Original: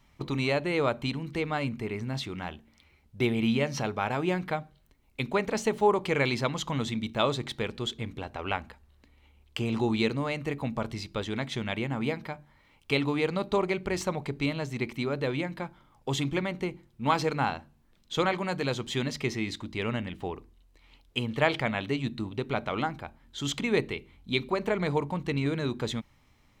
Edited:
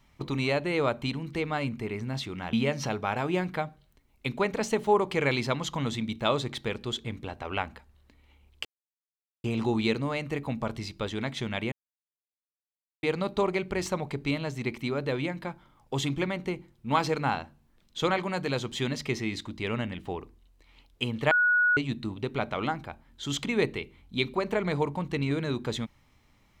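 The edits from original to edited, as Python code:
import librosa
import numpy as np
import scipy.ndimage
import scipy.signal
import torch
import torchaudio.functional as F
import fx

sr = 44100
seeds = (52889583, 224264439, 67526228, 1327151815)

y = fx.edit(x, sr, fx.cut(start_s=2.53, length_s=0.94),
    fx.insert_silence(at_s=9.59, length_s=0.79),
    fx.silence(start_s=11.87, length_s=1.31),
    fx.bleep(start_s=21.46, length_s=0.46, hz=1460.0, db=-19.5), tone=tone)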